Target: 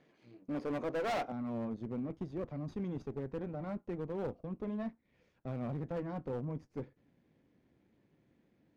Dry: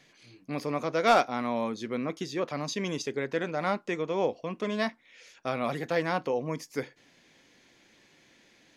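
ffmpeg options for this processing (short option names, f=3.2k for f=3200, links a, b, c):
-af "aeval=exprs='if(lt(val(0),0),0.251*val(0),val(0))':c=same,asetnsamples=n=441:p=0,asendcmd='1.32 bandpass f 110',bandpass=f=330:t=q:w=0.64:csg=0,asoftclip=type=hard:threshold=-35.5dB,volume=3.5dB"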